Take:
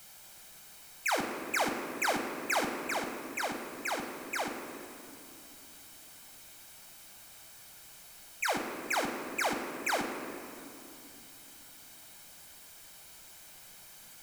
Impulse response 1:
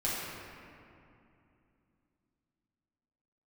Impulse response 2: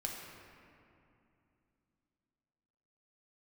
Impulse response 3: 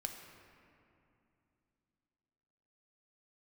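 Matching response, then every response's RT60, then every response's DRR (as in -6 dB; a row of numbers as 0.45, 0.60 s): 3; 2.7, 2.7, 2.7 s; -9.0, -1.5, 3.5 dB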